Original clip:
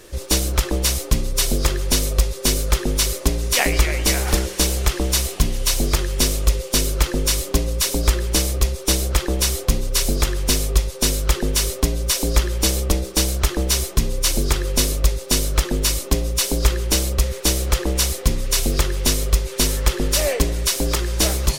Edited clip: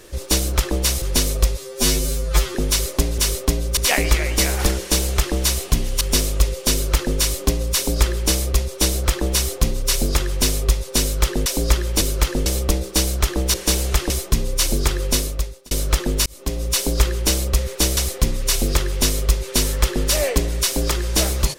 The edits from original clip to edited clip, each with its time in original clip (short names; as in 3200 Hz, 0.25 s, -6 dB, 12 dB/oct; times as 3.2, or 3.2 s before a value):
1.02–1.78 cut
2.33–2.82 stretch 2×
4.46–5.02 copy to 13.75
5.69–6.08 cut
6.8–7.25 copy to 12.67
11.53–12.12 move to 3.45
14.73–15.36 fade out
15.91–16.34 fade in
17.62–18.01 cut